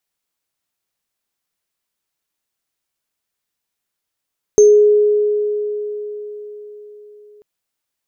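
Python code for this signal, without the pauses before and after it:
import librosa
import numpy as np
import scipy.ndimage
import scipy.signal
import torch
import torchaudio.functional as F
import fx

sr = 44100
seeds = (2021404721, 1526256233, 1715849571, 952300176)

y = fx.additive_free(sr, length_s=2.84, hz=418.0, level_db=-4.0, upper_db=(-12.0,), decay_s=4.45, upper_decays_s=(0.33,), upper_hz=(6330.0,))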